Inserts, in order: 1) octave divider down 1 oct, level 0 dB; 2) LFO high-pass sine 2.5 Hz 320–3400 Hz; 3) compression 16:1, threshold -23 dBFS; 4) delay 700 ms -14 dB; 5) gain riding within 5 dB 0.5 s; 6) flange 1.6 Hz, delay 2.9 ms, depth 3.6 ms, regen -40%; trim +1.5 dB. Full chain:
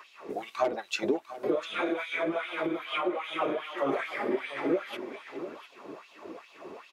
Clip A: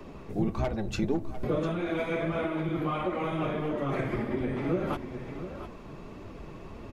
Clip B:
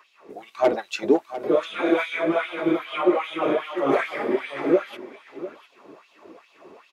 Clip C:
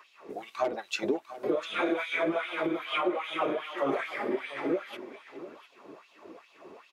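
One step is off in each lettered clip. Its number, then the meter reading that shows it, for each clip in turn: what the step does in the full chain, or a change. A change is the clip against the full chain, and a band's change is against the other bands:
2, 125 Hz band +20.5 dB; 3, mean gain reduction 4.0 dB; 5, momentary loudness spread change -1 LU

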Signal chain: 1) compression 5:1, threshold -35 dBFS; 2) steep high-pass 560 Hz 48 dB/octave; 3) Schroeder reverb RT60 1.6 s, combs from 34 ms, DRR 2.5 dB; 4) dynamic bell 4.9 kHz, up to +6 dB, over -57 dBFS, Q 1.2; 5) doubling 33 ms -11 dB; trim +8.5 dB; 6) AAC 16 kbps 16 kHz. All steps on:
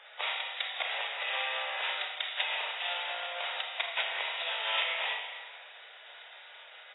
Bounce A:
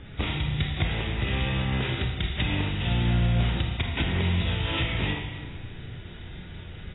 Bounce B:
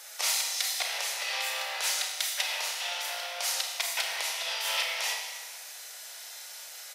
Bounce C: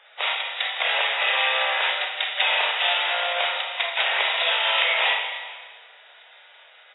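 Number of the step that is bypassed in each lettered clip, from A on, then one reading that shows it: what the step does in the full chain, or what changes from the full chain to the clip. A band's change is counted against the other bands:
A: 2, crest factor change -6.5 dB; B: 6, momentary loudness spread change -5 LU; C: 1, mean gain reduction 8.0 dB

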